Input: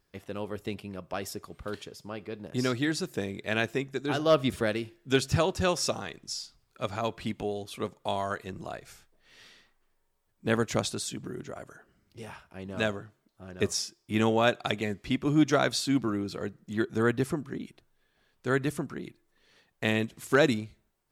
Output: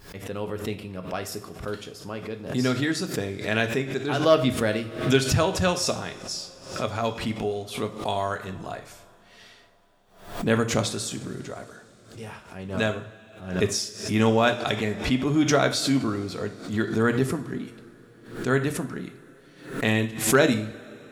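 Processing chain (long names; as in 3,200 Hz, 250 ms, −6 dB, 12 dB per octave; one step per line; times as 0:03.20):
coupled-rooms reverb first 0.43 s, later 4.6 s, from −21 dB, DRR 5.5 dB
background raised ahead of every attack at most 100 dB per second
level +2.5 dB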